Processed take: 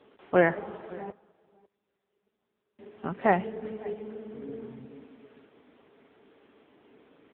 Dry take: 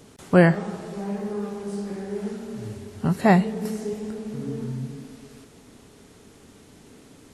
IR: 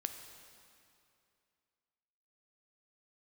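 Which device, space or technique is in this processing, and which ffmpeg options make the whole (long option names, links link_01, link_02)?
satellite phone: -filter_complex "[0:a]asettb=1/sr,asplit=3[link_01][link_02][link_03];[link_01]atrim=end=1.104[link_04];[link_02]atrim=start=1.1:end=2.79,asetpts=PTS-STARTPTS,afade=type=in:duration=0.004:curve=qsin,afade=type=out:start_time=1.686:duration=0.004:curve=qsin,agate=range=-43dB:threshold=-22dB:ratio=16:detection=peak[link_05];[link_03]atrim=start=2.786[link_06];[link_04][link_05]acrossfade=duration=0.004:curve1=hsin:curve2=qsin[link_07];[link_07][link_06]acrossfade=duration=0.004:curve1=qsin:curve2=hsin,highpass=350,lowpass=3100,aecho=1:1:552:0.075,volume=-2dB" -ar 8000 -c:a libopencore_amrnb -b:a 6700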